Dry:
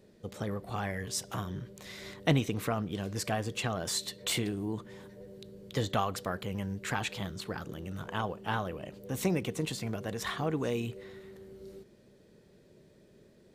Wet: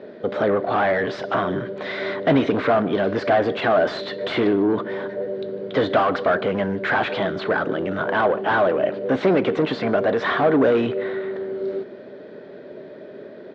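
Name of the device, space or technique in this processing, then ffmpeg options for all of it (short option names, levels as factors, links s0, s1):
overdrive pedal into a guitar cabinet: -filter_complex "[0:a]asettb=1/sr,asplit=3[s0][s1][s2];[s0]atrim=end=10.934[s3];[s1]atrim=start=10.93:end=11.35,asetpts=PTS-STARTPTS,afade=t=in:d=0.004:c=qsin,afade=t=out:st=0.416:d=0.004:c=qsin,lowpass=5200[s4];[s2]atrim=start=11.346[s5];[s3][s4]acrossfade=d=0.004:c1=hsin:c2=qsin[s6];[s6][s5]acrossfade=d=0.004:c1=qsin:c2=hsin,asplit=2[s7][s8];[s8]highpass=f=720:p=1,volume=28.2,asoftclip=type=tanh:threshold=0.237[s9];[s7][s9]amix=inputs=2:normalize=0,lowpass=f=1900:p=1,volume=0.501,highpass=94,equalizer=f=270:t=q:w=4:g=8,equalizer=f=400:t=q:w=4:g=5,equalizer=f=620:t=q:w=4:g=9,equalizer=f=1500:t=q:w=4:g=5,equalizer=f=2700:t=q:w=4:g=-5,lowpass=f=3800:w=0.5412,lowpass=f=3800:w=1.3066,asplit=2[s10][s11];[s11]adelay=151.6,volume=0.0891,highshelf=f=4000:g=-3.41[s12];[s10][s12]amix=inputs=2:normalize=0"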